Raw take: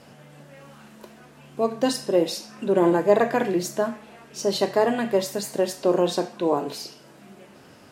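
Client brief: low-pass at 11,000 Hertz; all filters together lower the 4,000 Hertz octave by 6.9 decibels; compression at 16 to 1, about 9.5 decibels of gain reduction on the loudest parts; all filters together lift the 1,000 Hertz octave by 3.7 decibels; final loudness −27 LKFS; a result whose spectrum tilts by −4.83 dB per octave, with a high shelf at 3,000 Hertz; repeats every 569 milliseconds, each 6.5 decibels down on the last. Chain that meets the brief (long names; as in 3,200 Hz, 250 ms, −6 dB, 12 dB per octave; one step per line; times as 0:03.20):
low-pass filter 11,000 Hz
parametric band 1,000 Hz +5.5 dB
high-shelf EQ 3,000 Hz −3.5 dB
parametric band 4,000 Hz −6 dB
downward compressor 16 to 1, threshold −19 dBFS
repeating echo 569 ms, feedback 47%, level −6.5 dB
level −0.5 dB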